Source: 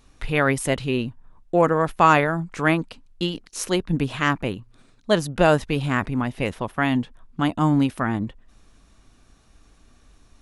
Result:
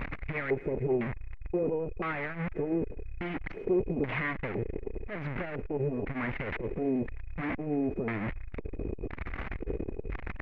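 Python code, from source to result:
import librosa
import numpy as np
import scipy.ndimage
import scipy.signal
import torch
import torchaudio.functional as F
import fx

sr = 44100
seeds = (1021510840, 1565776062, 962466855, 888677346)

p1 = np.sign(x) * np.sqrt(np.mean(np.square(x)))
p2 = fx.filter_lfo_lowpass(p1, sr, shape='square', hz=0.99, low_hz=420.0, high_hz=2100.0, q=5.4)
p3 = p2 + 10.0 ** (-42.0 / 20.0) * np.sin(2.0 * np.pi * 2500.0 * np.arange(len(p2)) / sr)
p4 = p3 + fx.echo_thinned(p3, sr, ms=107, feedback_pct=80, hz=690.0, wet_db=-20.5, dry=0)
p5 = fx.dmg_noise_colour(p4, sr, seeds[0], colour='violet', level_db=-47.0)
p6 = fx.spacing_loss(p5, sr, db_at_10k=32)
p7 = fx.transformer_sat(p6, sr, knee_hz=170.0)
y = F.gain(torch.from_numpy(p7), -7.0).numpy()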